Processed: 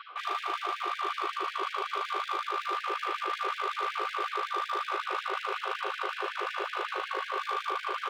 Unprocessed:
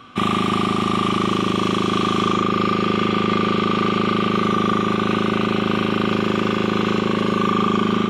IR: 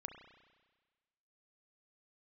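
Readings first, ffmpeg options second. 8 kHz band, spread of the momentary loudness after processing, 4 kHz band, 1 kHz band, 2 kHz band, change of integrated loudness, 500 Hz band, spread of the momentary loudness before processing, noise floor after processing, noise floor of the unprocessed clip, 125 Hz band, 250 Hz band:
-13.0 dB, 2 LU, -12.5 dB, -9.0 dB, -8.5 dB, -13.0 dB, -16.5 dB, 1 LU, -43 dBFS, -23 dBFS, under -40 dB, -31.0 dB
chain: -filter_complex "[0:a]acrossover=split=270|2200[s0][s1][s2];[s1]aeval=exprs='0.316*sin(PI/2*1.58*val(0)/0.316)':c=same[s3];[s2]alimiter=level_in=1.68:limit=0.0631:level=0:latency=1,volume=0.596[s4];[s0][s3][s4]amix=inputs=3:normalize=0,aresample=11025,aresample=44100,asubboost=boost=6.5:cutoff=87,asplit=2[s5][s6];[s6]adelay=17,volume=0.631[s7];[s5][s7]amix=inputs=2:normalize=0,areverse,acompressor=threshold=0.0562:ratio=10,areverse,aeval=exprs='clip(val(0),-1,0.0355)':c=same,afftfilt=real='re*gte(b*sr/1024,340*pow(1600/340,0.5+0.5*sin(2*PI*5.4*pts/sr)))':imag='im*gte(b*sr/1024,340*pow(1600/340,0.5+0.5*sin(2*PI*5.4*pts/sr)))':win_size=1024:overlap=0.75"

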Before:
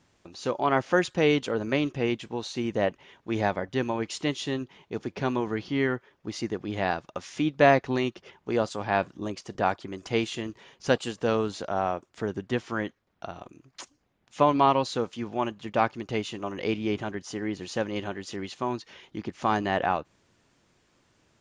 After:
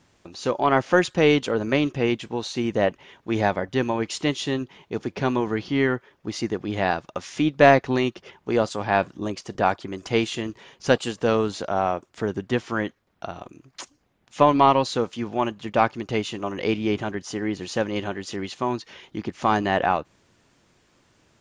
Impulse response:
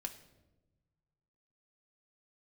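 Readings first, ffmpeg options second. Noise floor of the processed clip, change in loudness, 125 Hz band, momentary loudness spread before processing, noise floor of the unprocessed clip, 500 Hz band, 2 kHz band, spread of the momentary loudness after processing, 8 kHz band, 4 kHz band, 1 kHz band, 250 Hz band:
-65 dBFS, +4.5 dB, +4.5 dB, 14 LU, -69 dBFS, +4.5 dB, +4.5 dB, 14 LU, +4.5 dB, +4.5 dB, +4.5 dB, +4.5 dB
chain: -af "aeval=exprs='0.531*(cos(1*acos(clip(val(0)/0.531,-1,1)))-cos(1*PI/2))+0.0133*(cos(4*acos(clip(val(0)/0.531,-1,1)))-cos(4*PI/2))':c=same,volume=1.68"

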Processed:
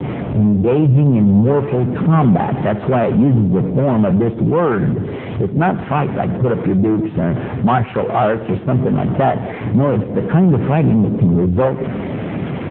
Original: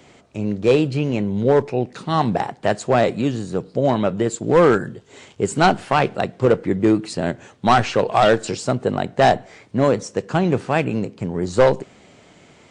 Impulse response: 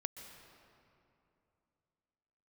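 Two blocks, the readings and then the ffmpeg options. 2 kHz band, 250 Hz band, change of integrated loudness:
-2.0 dB, +7.5 dB, +4.0 dB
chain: -filter_complex "[0:a]aeval=exprs='val(0)+0.5*0.0944*sgn(val(0))':c=same,acrossover=split=3000[s0][s1];[s1]acompressor=threshold=0.0112:ratio=4:attack=1:release=60[s2];[s0][s2]amix=inputs=2:normalize=0,acrossover=split=830[s3][s4];[s3]alimiter=limit=0.211:level=0:latency=1:release=82[s5];[s4]agate=range=0.00112:threshold=0.02:ratio=16:detection=peak[s6];[s5][s6]amix=inputs=2:normalize=0,aemphasis=mode=reproduction:type=riaa,dynaudnorm=f=150:g=21:m=2.82,aecho=1:1:131|262|393|524:0.126|0.0655|0.034|0.0177,aeval=exprs='0.944*(cos(1*acos(clip(val(0)/0.944,-1,1)))-cos(1*PI/2))+0.075*(cos(6*acos(clip(val(0)/0.944,-1,1)))-cos(6*PI/2))':c=same,asoftclip=type=tanh:threshold=0.841,equalizer=f=77:w=1.2:g=-4,volume=1.19" -ar 8000 -c:a libopencore_amrnb -b:a 7950

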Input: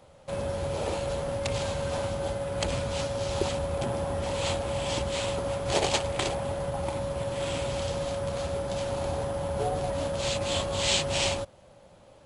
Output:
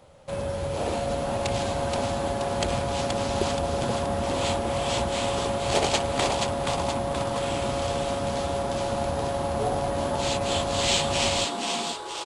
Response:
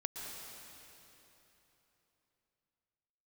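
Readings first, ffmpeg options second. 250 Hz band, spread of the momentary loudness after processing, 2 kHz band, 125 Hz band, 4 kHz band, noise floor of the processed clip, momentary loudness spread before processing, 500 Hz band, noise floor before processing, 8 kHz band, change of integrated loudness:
+5.5 dB, 5 LU, +3.5 dB, +1.5 dB, +3.5 dB, -33 dBFS, 5 LU, +2.5 dB, -54 dBFS, +3.5 dB, +3.5 dB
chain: -filter_complex "[0:a]aeval=exprs='0.376*(cos(1*acos(clip(val(0)/0.376,-1,1)))-cos(1*PI/2))+0.0188*(cos(2*acos(clip(val(0)/0.376,-1,1)))-cos(2*PI/2))+0.0188*(cos(4*acos(clip(val(0)/0.376,-1,1)))-cos(4*PI/2))':c=same,asplit=2[s0][s1];[s1]asplit=7[s2][s3][s4][s5][s6][s7][s8];[s2]adelay=476,afreqshift=140,volume=0.631[s9];[s3]adelay=952,afreqshift=280,volume=0.324[s10];[s4]adelay=1428,afreqshift=420,volume=0.164[s11];[s5]adelay=1904,afreqshift=560,volume=0.0841[s12];[s6]adelay=2380,afreqshift=700,volume=0.0427[s13];[s7]adelay=2856,afreqshift=840,volume=0.0219[s14];[s8]adelay=3332,afreqshift=980,volume=0.0111[s15];[s9][s10][s11][s12][s13][s14][s15]amix=inputs=7:normalize=0[s16];[s0][s16]amix=inputs=2:normalize=0,volume=1.19"

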